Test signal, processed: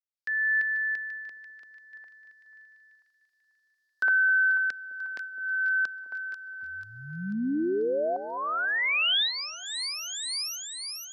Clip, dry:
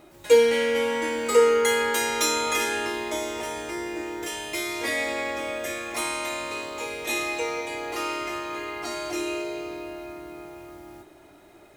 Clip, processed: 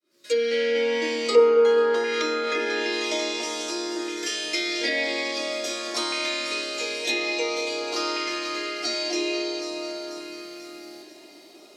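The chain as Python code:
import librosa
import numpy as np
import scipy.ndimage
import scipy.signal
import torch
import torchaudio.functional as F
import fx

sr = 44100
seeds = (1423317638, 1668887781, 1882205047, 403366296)

y = fx.fade_in_head(x, sr, length_s=0.98)
y = fx.peak_eq(y, sr, hz=870.0, db=-7.0, octaves=0.27)
y = fx.filter_lfo_notch(y, sr, shape='saw_up', hz=0.49, low_hz=720.0, high_hz=2400.0, q=1.6)
y = scipy.signal.sosfilt(scipy.signal.butter(4, 220.0, 'highpass', fs=sr, output='sos'), y)
y = fx.peak_eq(y, sr, hz=4800.0, db=13.0, octaves=0.72)
y = fx.echo_split(y, sr, split_hz=810.0, low_ms=208, high_ms=490, feedback_pct=52, wet_db=-11)
y = fx.env_lowpass_down(y, sr, base_hz=1600.0, full_db=-18.5)
y = y * 10.0 ** (2.5 / 20.0)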